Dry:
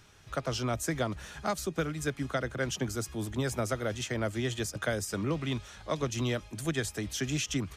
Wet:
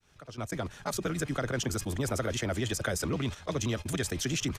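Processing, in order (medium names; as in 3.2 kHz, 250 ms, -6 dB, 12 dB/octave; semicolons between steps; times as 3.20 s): fade-in on the opening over 1.95 s; gate -40 dBFS, range -19 dB; granular stretch 0.59×, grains 22 ms; level flattener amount 50%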